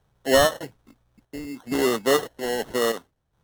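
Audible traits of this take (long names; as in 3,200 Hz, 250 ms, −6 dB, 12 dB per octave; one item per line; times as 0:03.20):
aliases and images of a low sample rate 2,400 Hz, jitter 0%
chopped level 0.6 Hz, depth 65%, duty 75%
MP3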